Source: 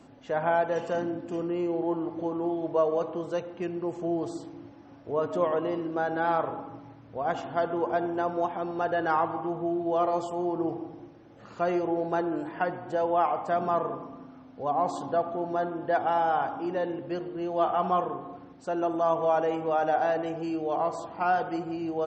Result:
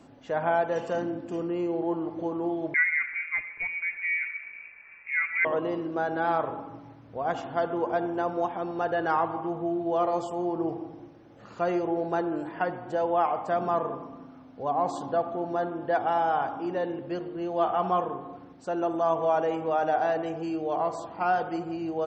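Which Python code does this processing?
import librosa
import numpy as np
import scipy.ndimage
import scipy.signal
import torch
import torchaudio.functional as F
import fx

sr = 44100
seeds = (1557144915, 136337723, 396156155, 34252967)

y = fx.freq_invert(x, sr, carrier_hz=2600, at=(2.74, 5.45))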